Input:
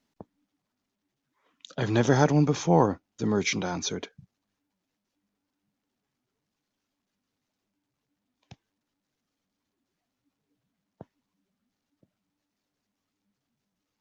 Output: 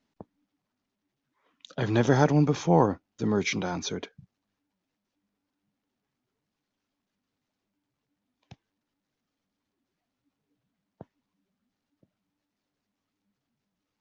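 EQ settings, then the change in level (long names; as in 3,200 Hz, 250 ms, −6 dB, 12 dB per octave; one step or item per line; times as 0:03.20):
high-frequency loss of the air 67 metres
0.0 dB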